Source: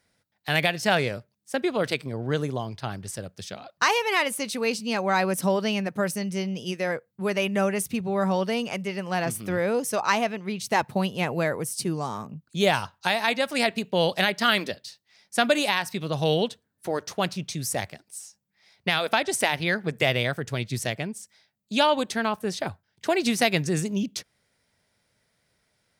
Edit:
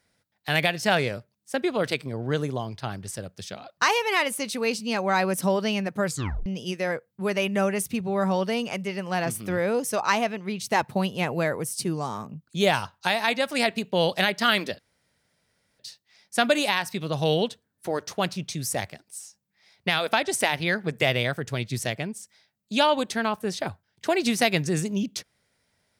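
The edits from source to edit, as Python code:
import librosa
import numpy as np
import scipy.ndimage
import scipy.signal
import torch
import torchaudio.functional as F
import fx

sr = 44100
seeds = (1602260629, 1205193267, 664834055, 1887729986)

y = fx.edit(x, sr, fx.tape_stop(start_s=6.06, length_s=0.4),
    fx.insert_room_tone(at_s=14.79, length_s=1.0), tone=tone)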